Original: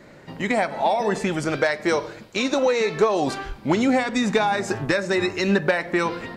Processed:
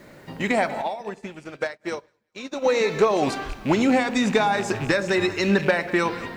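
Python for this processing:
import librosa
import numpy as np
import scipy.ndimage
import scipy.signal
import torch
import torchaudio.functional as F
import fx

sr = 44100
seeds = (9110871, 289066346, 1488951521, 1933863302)

y = fx.rattle_buzz(x, sr, strikes_db=-30.0, level_db=-25.0)
y = fx.echo_split(y, sr, split_hz=860.0, low_ms=102, high_ms=193, feedback_pct=52, wet_db=-15.5)
y = fx.quant_dither(y, sr, seeds[0], bits=10, dither='none')
y = fx.upward_expand(y, sr, threshold_db=-38.0, expansion=2.5, at=(0.81, 2.64), fade=0.02)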